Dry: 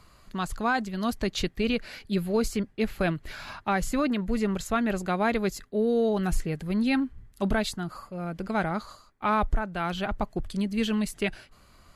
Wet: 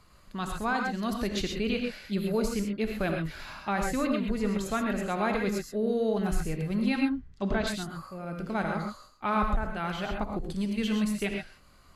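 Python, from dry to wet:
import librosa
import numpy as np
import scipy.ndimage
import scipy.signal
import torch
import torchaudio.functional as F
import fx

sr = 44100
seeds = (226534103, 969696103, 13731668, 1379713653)

y = fx.lowpass(x, sr, hz=6400.0, slope=24, at=(6.96, 7.67))
y = fx.rev_gated(y, sr, seeds[0], gate_ms=150, shape='rising', drr_db=2.0)
y = y * 10.0 ** (-4.0 / 20.0)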